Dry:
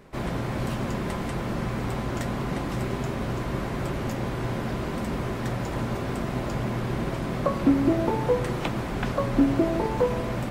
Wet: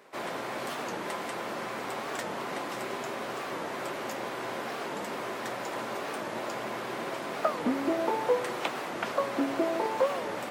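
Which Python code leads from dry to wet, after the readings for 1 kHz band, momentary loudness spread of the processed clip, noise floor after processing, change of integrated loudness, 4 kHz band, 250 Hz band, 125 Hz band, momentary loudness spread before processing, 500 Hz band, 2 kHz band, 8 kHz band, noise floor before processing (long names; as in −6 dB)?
−0.5 dB, 6 LU, −37 dBFS, −5.0 dB, 0.0 dB, −9.5 dB, −21.5 dB, 7 LU, −3.0 dB, 0.0 dB, 0.0 dB, −31 dBFS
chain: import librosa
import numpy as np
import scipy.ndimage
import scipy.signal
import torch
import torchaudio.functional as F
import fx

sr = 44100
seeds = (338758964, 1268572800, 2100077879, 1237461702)

y = scipy.signal.sosfilt(scipy.signal.butter(2, 470.0, 'highpass', fs=sr, output='sos'), x)
y = fx.record_warp(y, sr, rpm=45.0, depth_cents=250.0)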